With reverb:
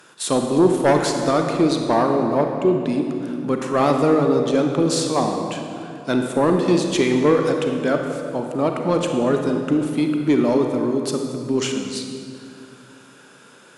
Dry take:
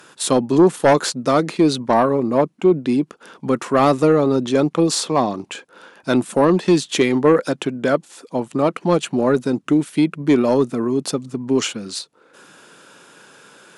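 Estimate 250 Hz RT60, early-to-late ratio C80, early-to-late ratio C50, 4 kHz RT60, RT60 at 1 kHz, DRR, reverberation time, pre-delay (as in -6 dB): 3.3 s, 5.0 dB, 4.0 dB, 1.8 s, 2.4 s, 3.5 dB, 2.6 s, 31 ms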